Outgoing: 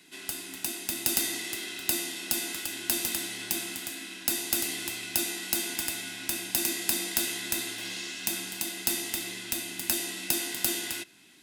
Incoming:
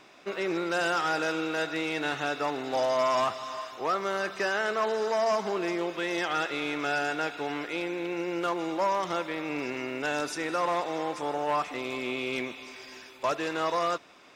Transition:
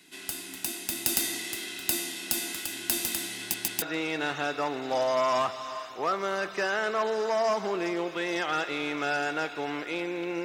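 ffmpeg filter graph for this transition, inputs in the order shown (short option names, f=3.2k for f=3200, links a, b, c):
-filter_complex "[0:a]apad=whole_dur=10.44,atrim=end=10.44,asplit=3[a][b][c];[a]atrim=end=3.542[d];[b]atrim=start=3.398:end=3.542[e];[c]atrim=start=3.398:end=3.542[f];[1:a]atrim=start=1.638:end=8.26[g];[d][e]acrossfade=d=0.004:c1=hsin:c2=hsin[h];[h][f]acrossfade=d=0.004:c1=hsin:c2=hsin[i];[i][g]acrossfade=d=0.004:c1=hsin:c2=hsin"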